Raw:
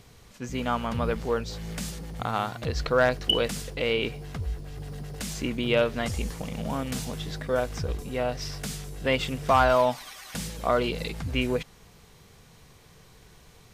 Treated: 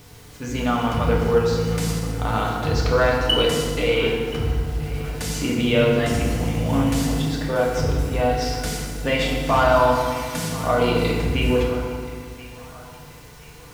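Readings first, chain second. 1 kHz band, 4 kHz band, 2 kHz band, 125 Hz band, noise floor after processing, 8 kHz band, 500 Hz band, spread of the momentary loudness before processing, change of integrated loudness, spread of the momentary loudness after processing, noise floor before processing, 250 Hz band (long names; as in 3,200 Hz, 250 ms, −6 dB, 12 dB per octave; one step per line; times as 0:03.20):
+5.5 dB, +5.5 dB, +5.5 dB, +9.5 dB, −43 dBFS, +6.5 dB, +6.5 dB, 13 LU, +6.5 dB, 11 LU, −54 dBFS, +9.0 dB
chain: in parallel at +1.5 dB: brickwall limiter −19.5 dBFS, peak gain reduction 9 dB
on the sum: bit reduction 8 bits
delay with a band-pass on its return 1,028 ms, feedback 45%, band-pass 1,400 Hz, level −15.5 dB
feedback delay network reverb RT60 1.8 s, low-frequency decay 1.55×, high-frequency decay 0.65×, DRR −3 dB
level −4 dB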